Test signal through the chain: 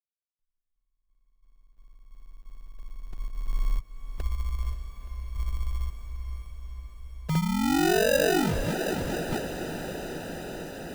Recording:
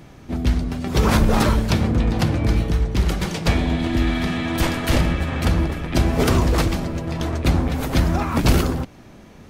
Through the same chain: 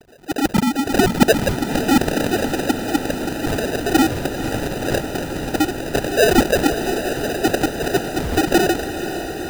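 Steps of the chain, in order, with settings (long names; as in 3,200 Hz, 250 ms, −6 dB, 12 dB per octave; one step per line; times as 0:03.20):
three sine waves on the formant tracks
low-shelf EQ 230 Hz +10 dB
notch filter 1,400 Hz, Q 20
sample-rate reduction 1,100 Hz, jitter 0%
on a send: feedback delay with all-pass diffusion 502 ms, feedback 80%, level −10.5 dB
on the sum: level −3.5 dB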